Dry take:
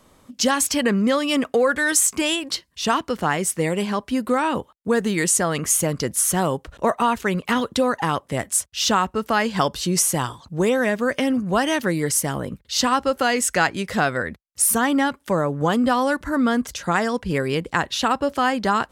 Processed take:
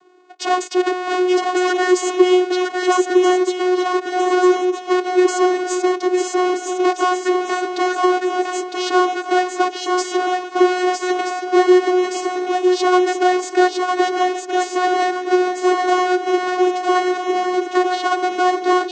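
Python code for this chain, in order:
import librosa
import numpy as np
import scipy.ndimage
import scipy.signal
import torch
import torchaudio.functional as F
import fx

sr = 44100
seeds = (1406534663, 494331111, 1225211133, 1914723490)

y = fx.halfwave_hold(x, sr)
y = fx.vocoder(y, sr, bands=16, carrier='saw', carrier_hz=364.0)
y = fx.echo_swing(y, sr, ms=1276, ratio=3, feedback_pct=35, wet_db=-4)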